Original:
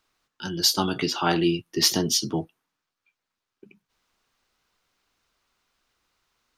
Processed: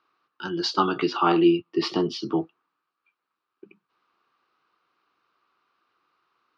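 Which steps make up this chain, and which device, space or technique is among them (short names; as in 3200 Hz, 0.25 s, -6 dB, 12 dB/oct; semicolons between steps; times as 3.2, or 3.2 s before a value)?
kitchen radio (speaker cabinet 200–3900 Hz, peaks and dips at 230 Hz -5 dB, 340 Hz +5 dB, 610 Hz -4 dB, 1200 Hz +10 dB, 2000 Hz -5 dB, 3400 Hz -6 dB); 1.17–2.2 thirty-one-band EQ 1600 Hz -9 dB, 4000 Hz -3 dB, 6300 Hz -11 dB; gain +1.5 dB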